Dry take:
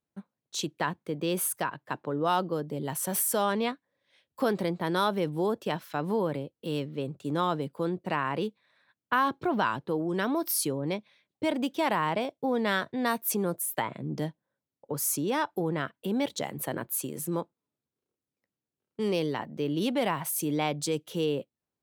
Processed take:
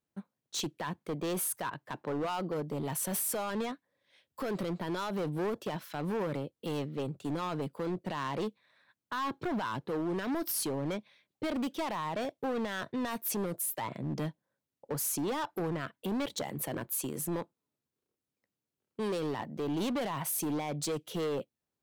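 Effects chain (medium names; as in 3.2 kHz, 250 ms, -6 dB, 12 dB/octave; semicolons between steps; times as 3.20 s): peak limiter -21 dBFS, peak gain reduction 8.5 dB; hard clipper -29.5 dBFS, distortion -10 dB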